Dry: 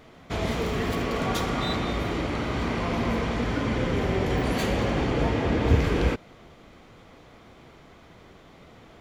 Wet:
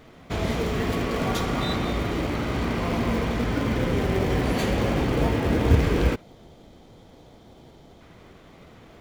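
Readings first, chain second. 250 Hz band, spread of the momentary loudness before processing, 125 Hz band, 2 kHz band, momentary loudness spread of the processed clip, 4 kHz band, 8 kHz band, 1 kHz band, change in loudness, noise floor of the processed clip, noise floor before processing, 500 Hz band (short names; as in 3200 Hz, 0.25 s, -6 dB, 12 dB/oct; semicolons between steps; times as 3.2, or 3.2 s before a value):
+2.0 dB, 6 LU, +2.0 dB, +0.5 dB, 6 LU, +0.5 dB, +1.5 dB, 0.0 dB, +1.5 dB, -51 dBFS, -51 dBFS, +1.5 dB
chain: spectral gain 6.22–8.01, 980–3000 Hz -8 dB; in parallel at -10.5 dB: decimation with a swept rate 31×, swing 60% 3 Hz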